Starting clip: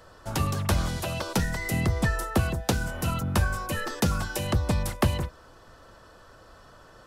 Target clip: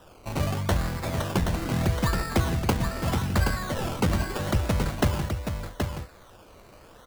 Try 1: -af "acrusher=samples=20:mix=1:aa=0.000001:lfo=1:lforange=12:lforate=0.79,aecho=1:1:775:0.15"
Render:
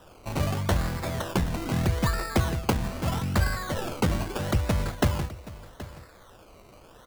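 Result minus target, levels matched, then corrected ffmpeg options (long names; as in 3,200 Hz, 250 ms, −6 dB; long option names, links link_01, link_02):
echo-to-direct −11 dB
-af "acrusher=samples=20:mix=1:aa=0.000001:lfo=1:lforange=12:lforate=0.79,aecho=1:1:775:0.531"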